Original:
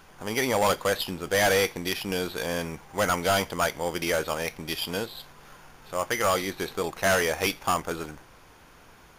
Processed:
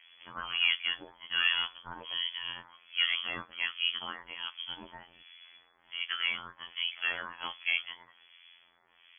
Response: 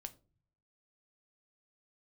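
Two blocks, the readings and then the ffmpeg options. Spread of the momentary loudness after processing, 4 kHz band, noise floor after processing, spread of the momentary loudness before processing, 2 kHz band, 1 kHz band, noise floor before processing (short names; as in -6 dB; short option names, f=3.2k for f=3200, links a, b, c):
17 LU, +2.0 dB, -66 dBFS, 10 LU, -4.0 dB, -15.0 dB, -53 dBFS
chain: -filter_complex "[0:a]afftfilt=real='hypot(re,im)*cos(PI*b)':imag='0':win_size=2048:overlap=0.75,acrossover=split=2000[a][b];[a]aeval=exprs='val(0)*(1-1/2+1/2*cos(2*PI*1.3*n/s))':c=same[c];[b]aeval=exprs='val(0)*(1-1/2-1/2*cos(2*PI*1.3*n/s))':c=same[d];[c][d]amix=inputs=2:normalize=0,lowpass=f=2.9k:t=q:w=0.5098,lowpass=f=2.9k:t=q:w=0.6013,lowpass=f=2.9k:t=q:w=0.9,lowpass=f=2.9k:t=q:w=2.563,afreqshift=-3400"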